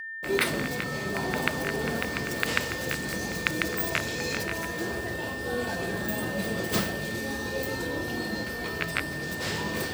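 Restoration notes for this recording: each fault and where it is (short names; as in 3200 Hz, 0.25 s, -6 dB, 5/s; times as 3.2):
tone 1800 Hz -35 dBFS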